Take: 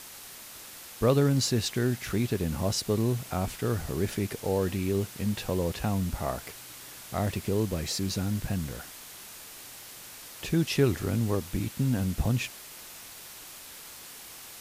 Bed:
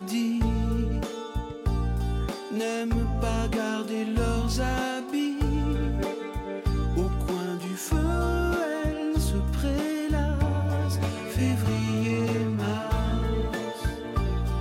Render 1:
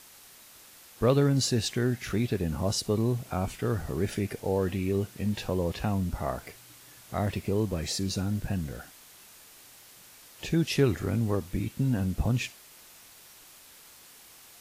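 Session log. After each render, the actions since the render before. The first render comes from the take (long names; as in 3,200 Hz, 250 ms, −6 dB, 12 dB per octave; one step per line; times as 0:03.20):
noise reduction from a noise print 7 dB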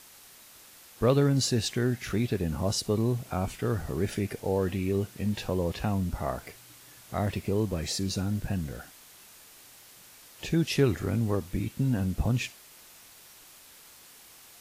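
no processing that can be heard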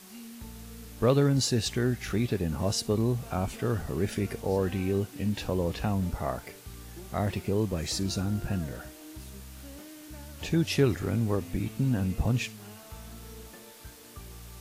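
mix in bed −19.5 dB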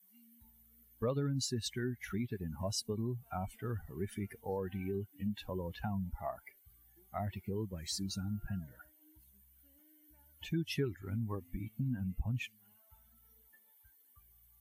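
spectral dynamics exaggerated over time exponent 2
downward compressor 2.5 to 1, threshold −35 dBFS, peak gain reduction 10.5 dB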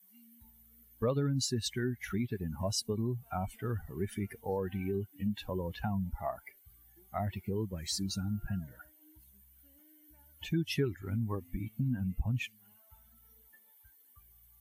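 level +3.5 dB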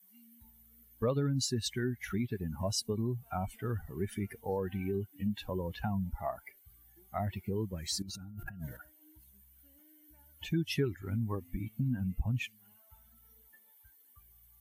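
0:08.02–0:08.77: compressor whose output falls as the input rises −44 dBFS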